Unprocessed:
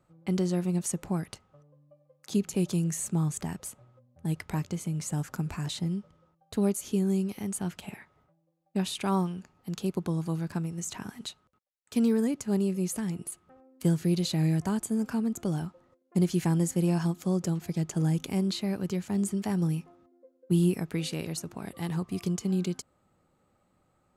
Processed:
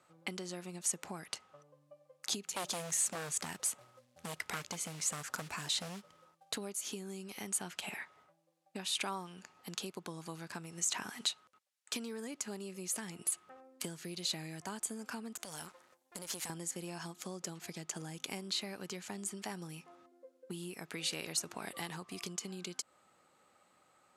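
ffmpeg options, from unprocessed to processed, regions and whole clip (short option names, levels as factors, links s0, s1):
-filter_complex "[0:a]asettb=1/sr,asplit=3[s0][s1][s2];[s0]atrim=end=2.434[s3];[s1]atrim=start=2.43:end=6.57,asetpts=PTS-STARTPTS,afade=t=in:d=0.004:c=qsin,afade=t=out:st=4.136:d=0.004:c=qsin,aeval=exprs='0.0422*(abs(mod(val(0)/0.0422+3,4)-2)-1)':c=same,acrusher=bits=5:mode=log:mix=0:aa=0.000001[s4];[s2]atrim=start=6.566[s5];[s3][s4]acrossfade=d=0.004:c1=hsin:c2=qsin[s6];[s6][s5]acrossfade=d=0.004:c1=qsin:c2=hsin,asettb=1/sr,asplit=3[s7][s8][s9];[s7]atrim=end=15.354[s10];[s8]atrim=start=15.35:end=16.5,asetpts=PTS-STARTPTS,afade=t=in:d=0.004:c=qsin,afade=t=out:st=1.146:d=0.004:c=qsin,aemphasis=mode=production:type=50kf,acompressor=threshold=0.0158:ratio=3:attack=3.2:release=140:knee=1:detection=peak,aeval=exprs='max(val(0),0)':c=same[s11];[s9]atrim=start=16.496[s12];[s10][s11]acrossfade=d=0.004:c1=hsin:c2=qsin[s13];[s13][s12]acrossfade=d=0.004:c1=qsin:c2=hsin,lowpass=11000,acompressor=threshold=0.0141:ratio=6,highpass=f=1300:p=1,volume=2.82"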